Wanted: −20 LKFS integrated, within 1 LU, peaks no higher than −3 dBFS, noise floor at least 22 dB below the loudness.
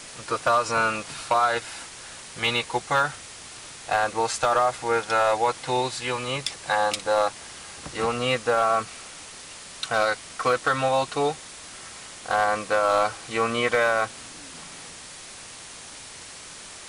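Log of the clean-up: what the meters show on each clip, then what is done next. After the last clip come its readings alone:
share of clipped samples 0.3%; peaks flattened at −13.5 dBFS; background noise floor −42 dBFS; target noise floor −47 dBFS; integrated loudness −24.5 LKFS; sample peak −13.5 dBFS; target loudness −20.0 LKFS
→ clipped peaks rebuilt −13.5 dBFS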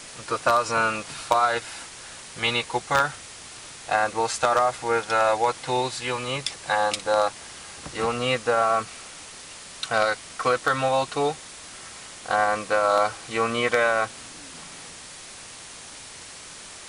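share of clipped samples 0.0%; background noise floor −42 dBFS; target noise floor −46 dBFS
→ broadband denoise 6 dB, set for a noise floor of −42 dBFS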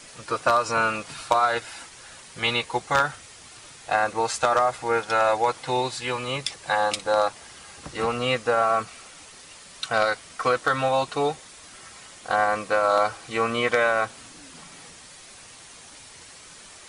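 background noise floor −47 dBFS; integrated loudness −24.0 LKFS; sample peak −4.5 dBFS; target loudness −20.0 LKFS
→ level +4 dB
brickwall limiter −3 dBFS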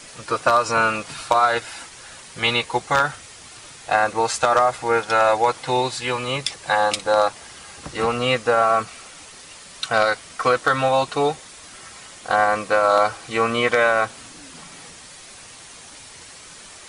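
integrated loudness −20.0 LKFS; sample peak −3.0 dBFS; background noise floor −43 dBFS

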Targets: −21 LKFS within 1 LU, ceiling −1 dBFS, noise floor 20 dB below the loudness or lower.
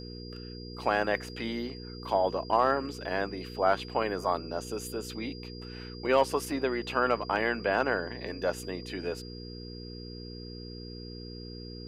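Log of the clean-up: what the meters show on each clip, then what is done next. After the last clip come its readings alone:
mains hum 60 Hz; hum harmonics up to 480 Hz; level of the hum −40 dBFS; interfering tone 4,800 Hz; level of the tone −47 dBFS; integrated loudness −30.5 LKFS; sample peak −12.5 dBFS; target loudness −21.0 LKFS
→ hum removal 60 Hz, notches 8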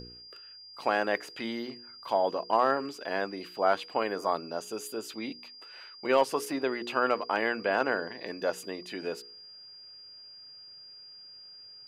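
mains hum none found; interfering tone 4,800 Hz; level of the tone −47 dBFS
→ notch filter 4,800 Hz, Q 30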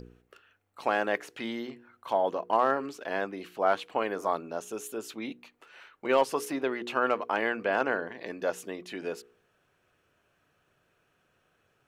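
interfering tone none found; integrated loudness −30.5 LKFS; sample peak −13.0 dBFS; target loudness −21.0 LKFS
→ level +9.5 dB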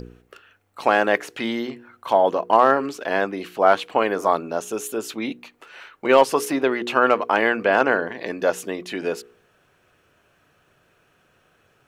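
integrated loudness −21.0 LKFS; sample peak −3.5 dBFS; background noise floor −62 dBFS

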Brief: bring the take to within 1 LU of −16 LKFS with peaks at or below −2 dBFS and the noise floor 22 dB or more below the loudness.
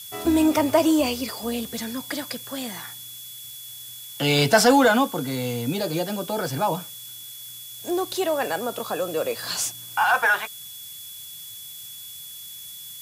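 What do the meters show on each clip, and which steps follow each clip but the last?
interfering tone 3,400 Hz; level of the tone −42 dBFS; background noise floor −40 dBFS; target noise floor −45 dBFS; integrated loudness −23.0 LKFS; sample peak −4.0 dBFS; target loudness −16.0 LKFS
→ notch filter 3,400 Hz, Q 30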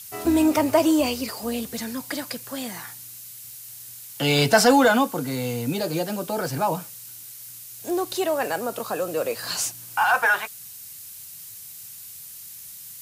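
interfering tone none found; background noise floor −41 dBFS; target noise floor −45 dBFS
→ noise reduction from a noise print 6 dB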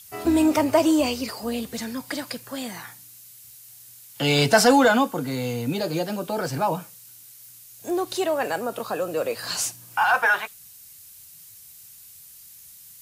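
background noise floor −47 dBFS; integrated loudness −23.0 LKFS; sample peak −4.0 dBFS; target loudness −16.0 LKFS
→ level +7 dB
brickwall limiter −2 dBFS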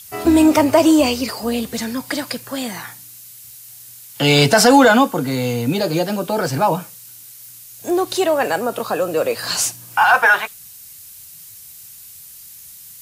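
integrated loudness −16.5 LKFS; sample peak −2.0 dBFS; background noise floor −40 dBFS

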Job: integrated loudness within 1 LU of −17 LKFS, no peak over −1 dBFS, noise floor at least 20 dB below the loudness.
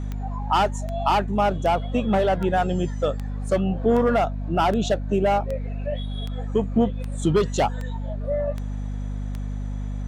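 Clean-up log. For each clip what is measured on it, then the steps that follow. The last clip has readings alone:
number of clicks 13; mains hum 50 Hz; hum harmonics up to 250 Hz; level of the hum −26 dBFS; integrated loudness −24.0 LKFS; sample peak −9.0 dBFS; target loudness −17.0 LKFS
→ click removal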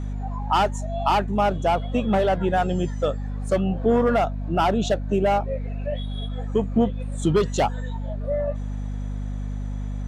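number of clicks 0; mains hum 50 Hz; hum harmonics up to 250 Hz; level of the hum −26 dBFS
→ hum removal 50 Hz, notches 5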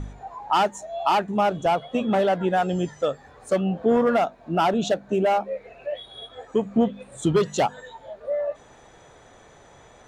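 mains hum none found; integrated loudness −24.0 LKFS; sample peak −10.5 dBFS; target loudness −17.0 LKFS
→ level +7 dB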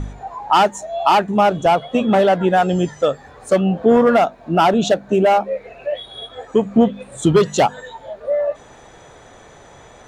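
integrated loudness −17.0 LKFS; sample peak −3.5 dBFS; background noise floor −44 dBFS

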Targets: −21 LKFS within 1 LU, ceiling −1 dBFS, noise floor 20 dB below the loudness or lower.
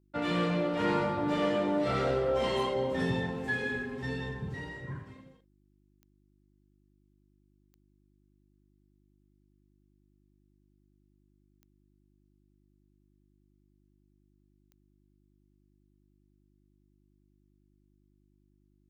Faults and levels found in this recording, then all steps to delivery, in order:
number of clicks 4; mains hum 50 Hz; hum harmonics up to 350 Hz; level of the hum −60 dBFS; integrated loudness −31.0 LKFS; sample peak −16.5 dBFS; target loudness −21.0 LKFS
→ click removal
hum removal 50 Hz, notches 7
level +10 dB

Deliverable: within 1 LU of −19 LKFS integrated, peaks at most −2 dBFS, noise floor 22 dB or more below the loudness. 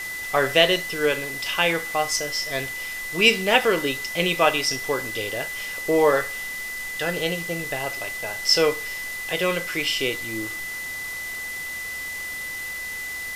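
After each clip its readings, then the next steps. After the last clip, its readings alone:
interfering tone 2,000 Hz; level of the tone −30 dBFS; background noise floor −32 dBFS; target noise floor −46 dBFS; integrated loudness −23.5 LKFS; sample peak −1.0 dBFS; target loudness −19.0 LKFS
→ notch filter 2,000 Hz, Q 30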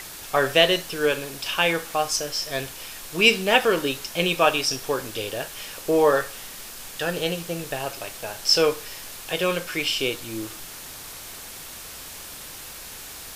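interfering tone none found; background noise floor −39 dBFS; target noise floor −45 dBFS
→ broadband denoise 6 dB, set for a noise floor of −39 dBFS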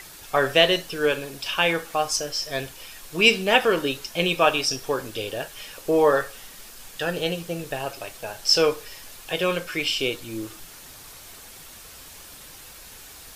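background noise floor −44 dBFS; target noise floor −45 dBFS
→ broadband denoise 6 dB, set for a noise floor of −44 dBFS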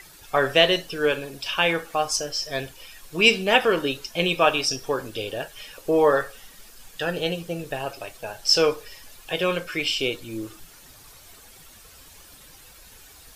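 background noise floor −49 dBFS; integrated loudness −23.0 LKFS; sample peak −1.5 dBFS; target loudness −19.0 LKFS
→ level +4 dB
brickwall limiter −2 dBFS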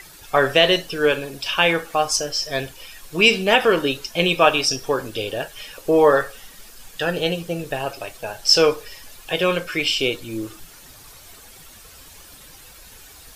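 integrated loudness −19.5 LKFS; sample peak −2.0 dBFS; background noise floor −45 dBFS

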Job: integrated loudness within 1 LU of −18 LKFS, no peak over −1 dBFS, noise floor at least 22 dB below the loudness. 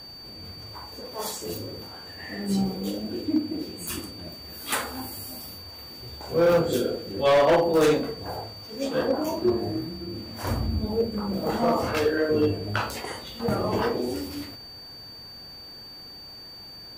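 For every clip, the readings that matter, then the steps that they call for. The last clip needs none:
share of clipped samples 0.9%; peaks flattened at −15.0 dBFS; interfering tone 4,600 Hz; level of the tone −41 dBFS; integrated loudness −26.5 LKFS; sample peak −15.0 dBFS; target loudness −18.0 LKFS
→ clipped peaks rebuilt −15 dBFS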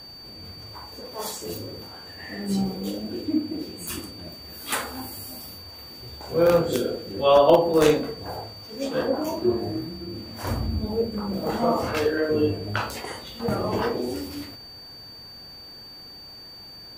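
share of clipped samples 0.0%; interfering tone 4,600 Hz; level of the tone −41 dBFS
→ notch filter 4,600 Hz, Q 30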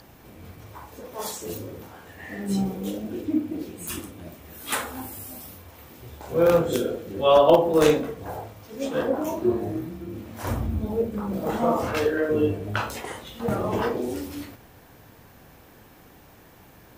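interfering tone none found; integrated loudness −25.0 LKFS; sample peak −6.0 dBFS; target loudness −18.0 LKFS
→ level +7 dB
brickwall limiter −1 dBFS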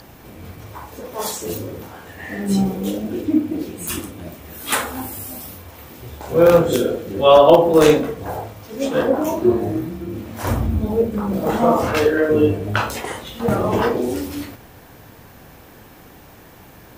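integrated loudness −18.5 LKFS; sample peak −1.0 dBFS; background noise floor −44 dBFS

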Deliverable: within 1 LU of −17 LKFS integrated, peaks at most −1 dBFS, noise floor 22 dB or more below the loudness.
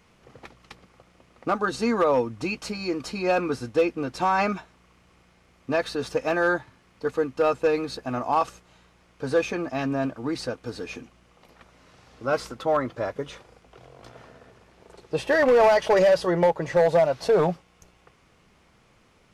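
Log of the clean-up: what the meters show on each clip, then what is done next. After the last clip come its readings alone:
share of clipped samples 0.6%; peaks flattened at −13.5 dBFS; integrated loudness −24.5 LKFS; sample peak −13.5 dBFS; target loudness −17.0 LKFS
→ clipped peaks rebuilt −13.5 dBFS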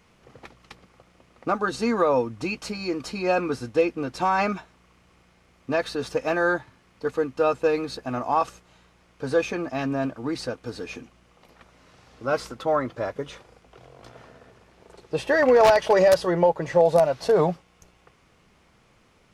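share of clipped samples 0.0%; integrated loudness −24.0 LKFS; sample peak −4.5 dBFS; target loudness −17.0 LKFS
→ level +7 dB
brickwall limiter −1 dBFS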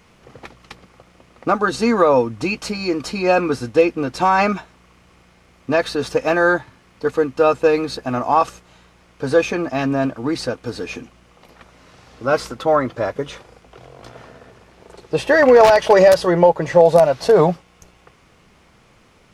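integrated loudness −17.0 LKFS; sample peak −1.0 dBFS; background noise floor −53 dBFS

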